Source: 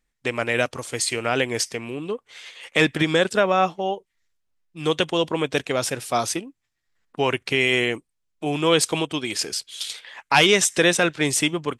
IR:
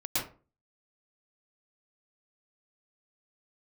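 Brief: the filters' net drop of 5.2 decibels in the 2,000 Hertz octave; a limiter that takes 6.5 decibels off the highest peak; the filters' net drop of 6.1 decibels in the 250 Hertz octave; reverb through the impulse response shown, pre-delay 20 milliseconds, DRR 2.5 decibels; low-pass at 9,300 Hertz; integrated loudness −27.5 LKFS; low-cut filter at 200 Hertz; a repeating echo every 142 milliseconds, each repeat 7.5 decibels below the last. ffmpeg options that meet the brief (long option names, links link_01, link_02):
-filter_complex "[0:a]highpass=200,lowpass=9300,equalizer=frequency=250:width_type=o:gain=-7.5,equalizer=frequency=2000:width_type=o:gain=-6.5,alimiter=limit=-13.5dB:level=0:latency=1,aecho=1:1:142|284|426|568|710:0.422|0.177|0.0744|0.0312|0.0131,asplit=2[link_01][link_02];[1:a]atrim=start_sample=2205,adelay=20[link_03];[link_02][link_03]afir=irnorm=-1:irlink=0,volume=-9.5dB[link_04];[link_01][link_04]amix=inputs=2:normalize=0,volume=-3dB"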